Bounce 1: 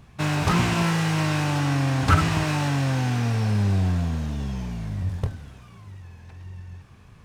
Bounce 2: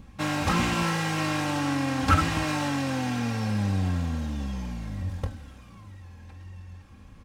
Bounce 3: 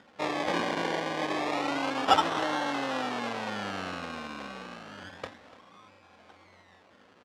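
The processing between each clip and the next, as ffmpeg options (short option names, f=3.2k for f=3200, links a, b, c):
-filter_complex "[0:a]aecho=1:1:3.7:0.61,acrossover=split=430|3700[a][b][c];[a]acompressor=mode=upward:threshold=-38dB:ratio=2.5[d];[d][b][c]amix=inputs=3:normalize=0,volume=-3dB"
-af "acrusher=samples=26:mix=1:aa=0.000001:lfo=1:lforange=15.6:lforate=0.29,highpass=440,lowpass=4.2k,aecho=1:1:293:0.126,volume=2dB"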